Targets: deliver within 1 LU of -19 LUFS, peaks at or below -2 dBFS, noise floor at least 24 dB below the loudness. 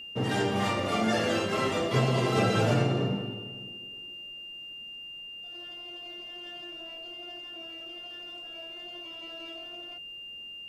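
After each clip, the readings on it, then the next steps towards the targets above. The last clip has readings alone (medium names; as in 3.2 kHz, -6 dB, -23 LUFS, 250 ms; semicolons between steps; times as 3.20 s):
steady tone 2.8 kHz; tone level -40 dBFS; loudness -31.5 LUFS; peak level -13.0 dBFS; loudness target -19.0 LUFS
-> band-stop 2.8 kHz, Q 30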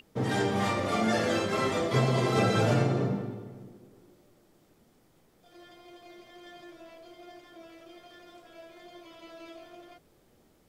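steady tone not found; loudness -27.5 LUFS; peak level -13.0 dBFS; loudness target -19.0 LUFS
-> trim +8.5 dB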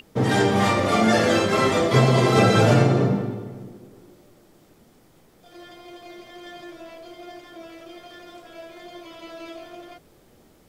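loudness -19.0 LUFS; peak level -4.5 dBFS; noise floor -56 dBFS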